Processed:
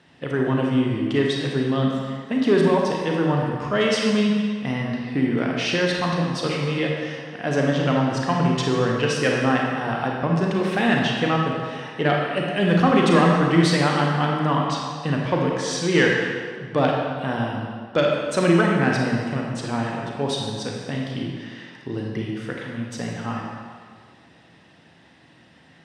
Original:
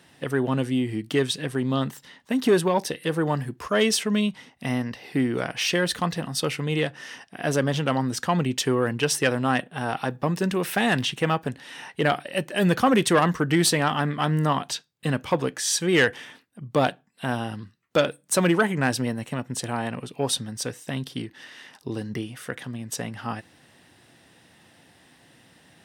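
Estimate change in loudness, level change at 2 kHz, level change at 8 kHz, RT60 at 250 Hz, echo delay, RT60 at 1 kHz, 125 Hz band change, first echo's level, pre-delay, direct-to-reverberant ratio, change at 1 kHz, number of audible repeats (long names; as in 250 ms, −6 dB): +3.0 dB, +2.5 dB, −7.0 dB, 1.7 s, no echo audible, 1.9 s, +4.0 dB, no echo audible, 29 ms, −1.0 dB, +3.0 dB, no echo audible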